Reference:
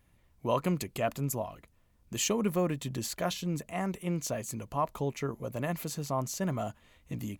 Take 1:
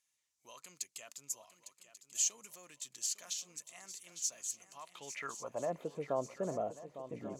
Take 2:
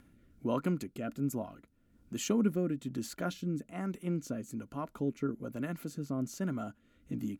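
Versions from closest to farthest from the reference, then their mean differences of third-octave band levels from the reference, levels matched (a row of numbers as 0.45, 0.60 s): 2, 1; 5.5, 11.0 dB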